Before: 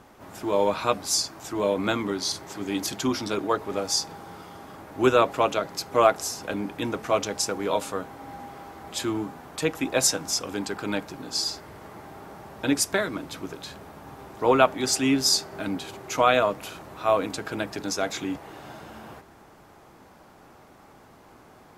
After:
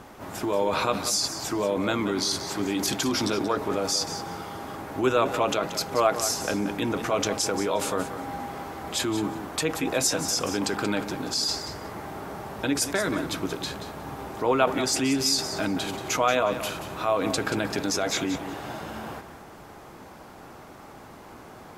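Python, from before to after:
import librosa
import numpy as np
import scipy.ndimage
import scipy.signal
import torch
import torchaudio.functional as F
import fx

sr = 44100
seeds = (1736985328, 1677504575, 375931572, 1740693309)

p1 = fx.over_compress(x, sr, threshold_db=-32.0, ratio=-1.0)
p2 = x + (p1 * 10.0 ** (1.5 / 20.0))
p3 = fx.echo_feedback(p2, sr, ms=181, feedback_pct=18, wet_db=-11.0)
y = p3 * 10.0 ** (-4.0 / 20.0)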